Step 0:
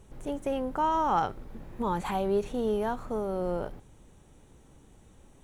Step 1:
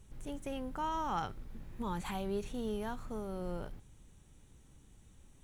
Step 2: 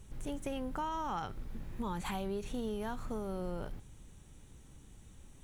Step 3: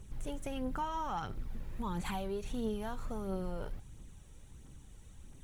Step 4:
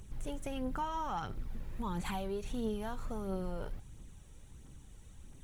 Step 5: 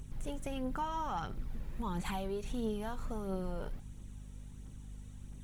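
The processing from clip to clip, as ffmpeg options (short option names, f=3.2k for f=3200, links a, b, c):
-af "equalizer=f=590:t=o:w=2.6:g=-10,volume=-2dB"
-af "acompressor=threshold=-38dB:ratio=6,volume=4.5dB"
-af "aphaser=in_gain=1:out_gain=1:delay=2.3:decay=0.38:speed=1.5:type=triangular,volume=-1dB"
-af "acompressor=mode=upward:threshold=-58dB:ratio=2.5"
-af "aeval=exprs='val(0)+0.00398*(sin(2*PI*50*n/s)+sin(2*PI*2*50*n/s)/2+sin(2*PI*3*50*n/s)/3+sin(2*PI*4*50*n/s)/4+sin(2*PI*5*50*n/s)/5)':c=same"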